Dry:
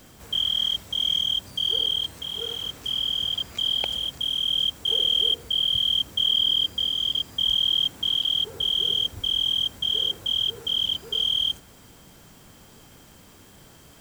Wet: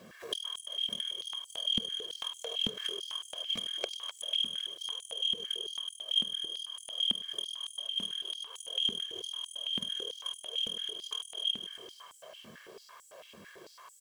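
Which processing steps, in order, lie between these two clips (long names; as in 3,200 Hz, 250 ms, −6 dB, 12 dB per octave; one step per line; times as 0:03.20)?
delay that plays each chunk backwards 144 ms, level −6 dB
high-shelf EQ 4,100 Hz −11.5 dB
comb filter 1.8 ms, depth 90%
downward compressor 16 to 1, threshold −35 dBFS, peak gain reduction 17 dB
harmonic generator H 3 −12 dB, 6 −42 dB, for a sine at −24 dBFS
echo with shifted repeats 254 ms, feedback 49%, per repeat −32 Hz, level −10 dB
high-pass on a step sequencer 9 Hz 220–7,900 Hz
level +8 dB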